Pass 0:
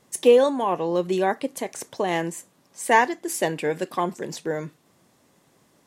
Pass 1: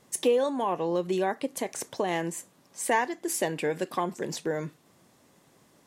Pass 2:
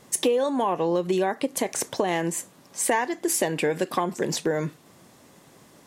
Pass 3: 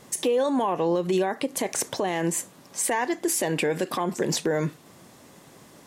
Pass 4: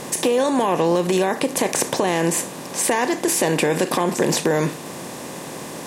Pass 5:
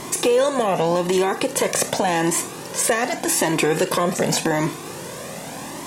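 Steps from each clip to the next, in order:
compressor 2:1, threshold -27 dBFS, peak gain reduction 9 dB
compressor 3:1, threshold -29 dBFS, peak gain reduction 8 dB; gain +8 dB
limiter -18 dBFS, peak gain reduction 8.5 dB; gain +2.5 dB
per-bin compression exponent 0.6; gain +2.5 dB
cascading flanger rising 0.86 Hz; gain +5 dB

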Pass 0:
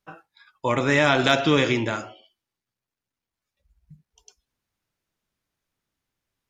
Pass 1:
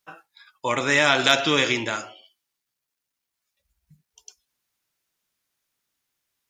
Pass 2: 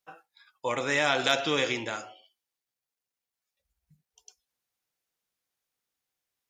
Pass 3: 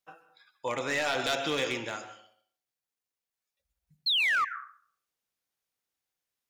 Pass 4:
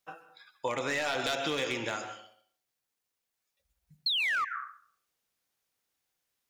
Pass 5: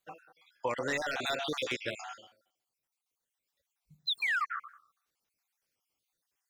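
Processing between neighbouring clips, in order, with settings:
tilt +2.5 dB/oct
small resonant body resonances 500/750 Hz, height 7 dB, ringing for 35 ms; gain -7.5 dB
painted sound fall, 4.06–4.45, 1100–4400 Hz -23 dBFS; plate-style reverb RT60 0.51 s, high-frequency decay 0.7×, pre-delay 0.115 s, DRR 13 dB; overloaded stage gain 20.5 dB; gain -2.5 dB
compressor 5:1, threshold -34 dBFS, peak gain reduction 8.5 dB; gain +5 dB
random spectral dropouts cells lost 46%

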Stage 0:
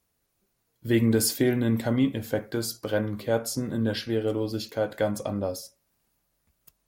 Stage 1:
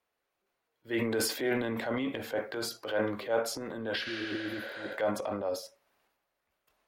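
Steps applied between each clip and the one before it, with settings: three-band isolator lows -19 dB, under 370 Hz, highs -16 dB, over 3500 Hz; transient shaper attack -6 dB, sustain +8 dB; spectral repair 4.08–4.91, 430–10000 Hz both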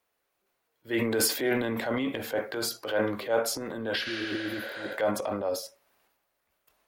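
high shelf 8300 Hz +7.5 dB; gain +3 dB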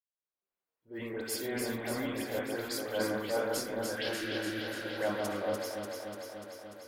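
opening faded in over 2.19 s; dispersion highs, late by 87 ms, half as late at 1900 Hz; on a send: echo with dull and thin repeats by turns 0.147 s, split 1900 Hz, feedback 84%, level -3 dB; on the sum: gain -6.5 dB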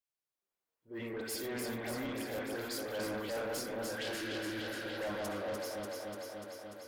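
soft clip -34 dBFS, distortion -10 dB

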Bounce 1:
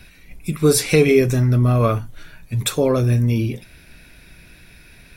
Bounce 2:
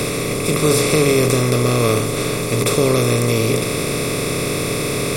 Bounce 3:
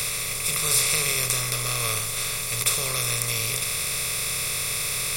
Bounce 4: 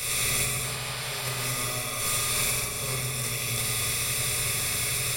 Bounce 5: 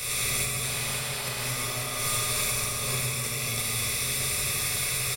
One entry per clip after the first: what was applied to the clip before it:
per-bin compression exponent 0.2; gain -5.5 dB
passive tone stack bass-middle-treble 10-0-10; crossover distortion -45 dBFS; high shelf 11000 Hz +6 dB
negative-ratio compressor -29 dBFS, ratio -0.5; painted sound noise, 0.63–1.45, 470–5200 Hz -37 dBFS; reverb RT60 2.4 s, pre-delay 4 ms, DRR -4 dB; gain -4 dB
echo 0.542 s -5 dB; gain -1.5 dB

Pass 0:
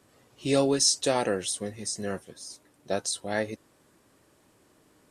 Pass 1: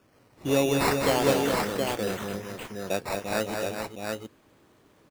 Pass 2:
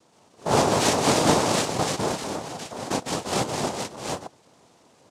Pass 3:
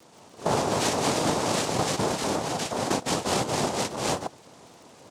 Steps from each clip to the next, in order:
high shelf 9400 Hz -10.5 dB; decimation with a swept rate 11×, swing 60% 0.4 Hz; on a send: tapped delay 0.202/0.232/0.412/0.72 s -5.5/-10/-7.5/-4 dB
noise vocoder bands 2; gain +3 dB
compressor 6:1, threshold -29 dBFS, peak gain reduction 14 dB; crackle 38/s -48 dBFS; gain +6.5 dB

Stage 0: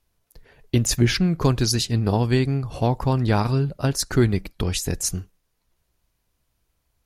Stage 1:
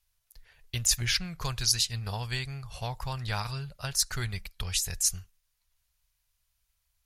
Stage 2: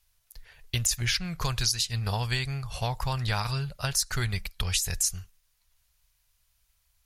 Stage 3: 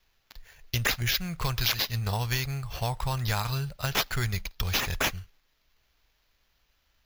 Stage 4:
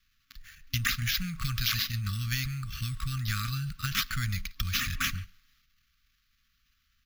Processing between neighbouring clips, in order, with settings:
passive tone stack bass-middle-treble 10-0-10
compressor 10:1, threshold -29 dBFS, peak gain reduction 10.5 dB; gain +6 dB
sample-and-hold 5×
transient shaper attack +2 dB, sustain +8 dB; FFT band-reject 270–1100 Hz; speakerphone echo 0.14 s, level -20 dB; gain -3 dB

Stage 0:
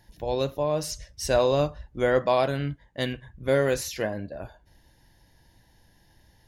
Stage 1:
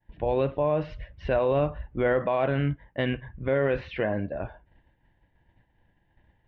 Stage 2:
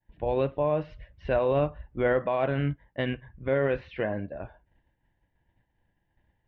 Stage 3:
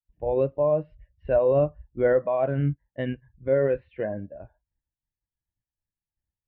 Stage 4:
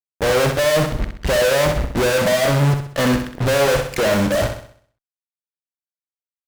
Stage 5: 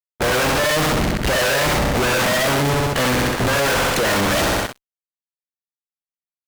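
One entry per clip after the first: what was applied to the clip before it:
expander -50 dBFS; steep low-pass 2900 Hz 36 dB/oct; limiter -20.5 dBFS, peak gain reduction 9 dB; gain +4.5 dB
upward expander 1.5:1, over -35 dBFS
spectral expander 1.5:1; gain +4 dB
sample leveller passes 5; fuzz box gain 42 dB, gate -50 dBFS; flutter echo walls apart 11 m, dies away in 0.54 s; gain -3 dB
spectral limiter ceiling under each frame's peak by 14 dB; fuzz box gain 40 dB, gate -46 dBFS; gain -4 dB

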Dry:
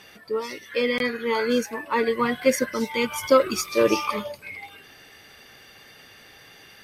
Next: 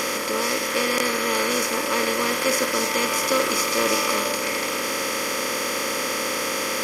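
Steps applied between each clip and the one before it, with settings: per-bin compression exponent 0.2; high shelf 2300 Hz +10.5 dB; gain -10 dB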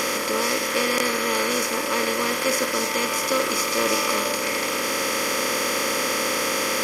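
vocal rider 2 s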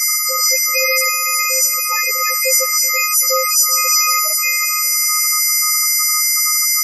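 frequency quantiser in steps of 3 st; loudest bins only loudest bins 8; darkening echo 0.38 s, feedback 62%, low-pass 2800 Hz, level -18 dB; gain +5.5 dB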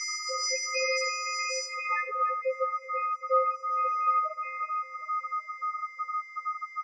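low-pass sweep 5800 Hz -> 1200 Hz, 1.56–2.12; tape spacing loss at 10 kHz 25 dB; on a send at -18 dB: reverb, pre-delay 3 ms; on the sum: gain -8 dB

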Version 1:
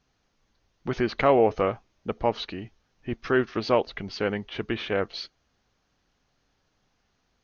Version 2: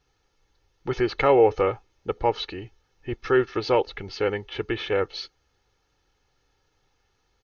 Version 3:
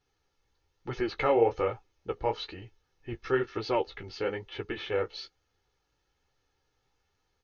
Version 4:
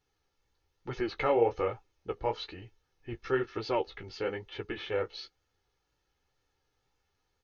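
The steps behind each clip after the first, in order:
comb 2.3 ms, depth 64%
flange 1.1 Hz, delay 8.9 ms, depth 10 ms, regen -20%; gain -3 dB
wow and flutter 24 cents; gain -2 dB

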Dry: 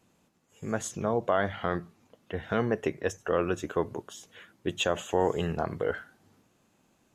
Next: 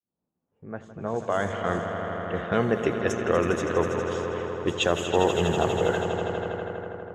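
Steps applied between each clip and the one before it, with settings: opening faded in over 2.07 s; swelling echo 81 ms, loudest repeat 5, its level -11 dB; low-pass opened by the level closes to 890 Hz, open at -23.5 dBFS; gain +3.5 dB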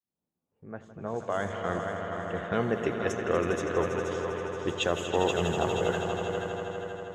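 thinning echo 0.476 s, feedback 41%, level -6.5 dB; gain -4.5 dB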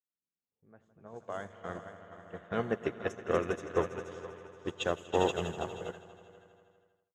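ending faded out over 1.83 s; upward expander 2.5:1, over -35 dBFS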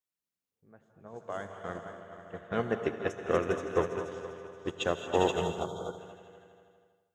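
spectral gain 5.44–5.98, 1500–3100 Hz -22 dB; non-linear reverb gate 0.25 s rising, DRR 9.5 dB; gain +1.5 dB

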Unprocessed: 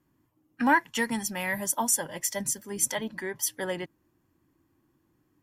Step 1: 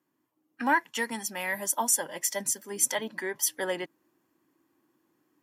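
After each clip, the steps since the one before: HPF 280 Hz 12 dB/oct; vocal rider 2 s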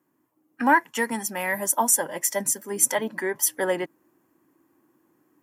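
bell 3900 Hz -9.5 dB 1.4 oct; gain +7 dB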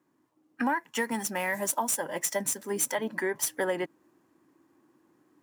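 median filter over 3 samples; compressor 6:1, threshold -25 dBFS, peak gain reduction 12 dB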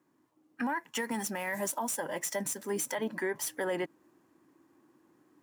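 limiter -24 dBFS, peak gain reduction 9.5 dB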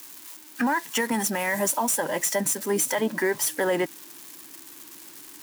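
switching spikes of -39 dBFS; gain +8.5 dB

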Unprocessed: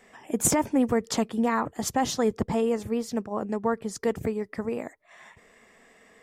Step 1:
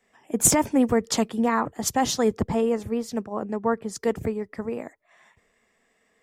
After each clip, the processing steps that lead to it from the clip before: three-band expander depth 40%; gain +2 dB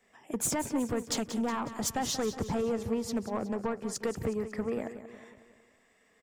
compressor 6:1, threshold -25 dBFS, peak gain reduction 11.5 dB; soft clip -24 dBFS, distortion -14 dB; feedback echo 0.183 s, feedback 52%, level -12 dB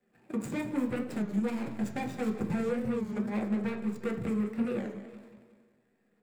median filter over 41 samples; reverb RT60 0.55 s, pre-delay 3 ms, DRR 3 dB; record warp 33 1/3 rpm, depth 160 cents

